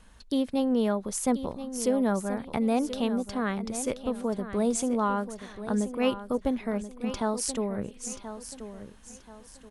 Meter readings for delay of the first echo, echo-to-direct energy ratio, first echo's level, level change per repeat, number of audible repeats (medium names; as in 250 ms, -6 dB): 1031 ms, -11.0 dB, -11.5 dB, -9.5 dB, 3